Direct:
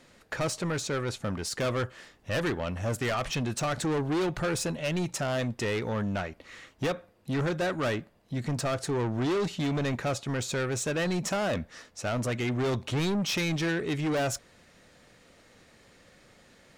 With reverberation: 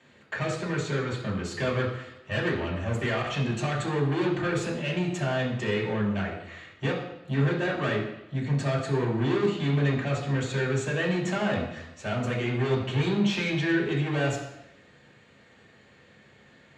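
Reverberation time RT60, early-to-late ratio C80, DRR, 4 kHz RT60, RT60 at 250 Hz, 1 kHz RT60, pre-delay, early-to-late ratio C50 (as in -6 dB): 0.90 s, 8.0 dB, -4.5 dB, 0.90 s, 0.90 s, 0.90 s, 3 ms, 5.5 dB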